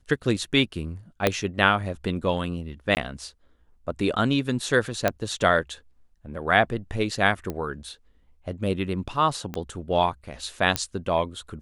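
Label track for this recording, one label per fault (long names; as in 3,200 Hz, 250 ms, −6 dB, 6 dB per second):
1.270000	1.270000	click −5 dBFS
2.950000	2.970000	drop-out 19 ms
5.080000	5.080000	click −7 dBFS
7.500000	7.500000	click −17 dBFS
9.540000	9.540000	click −17 dBFS
10.760000	10.760000	click −6 dBFS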